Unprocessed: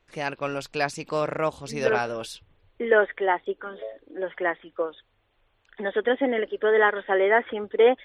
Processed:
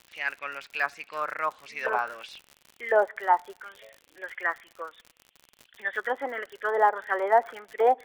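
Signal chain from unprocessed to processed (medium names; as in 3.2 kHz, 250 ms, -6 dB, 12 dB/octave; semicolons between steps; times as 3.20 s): auto-wah 780–3100 Hz, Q 3.3, down, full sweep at -16 dBFS; crackle 72 per s -42 dBFS; on a send: reverberation RT60 0.85 s, pre-delay 5 ms, DRR 24 dB; on the sum: trim +6 dB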